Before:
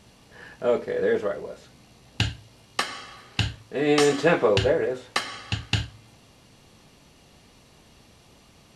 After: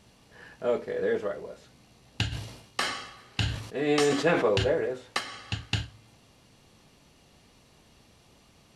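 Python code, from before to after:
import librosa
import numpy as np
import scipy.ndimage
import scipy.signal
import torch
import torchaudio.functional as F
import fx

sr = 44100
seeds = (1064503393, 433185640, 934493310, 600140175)

y = fx.sustainer(x, sr, db_per_s=70.0, at=(2.31, 4.9), fade=0.02)
y = F.gain(torch.from_numpy(y), -4.5).numpy()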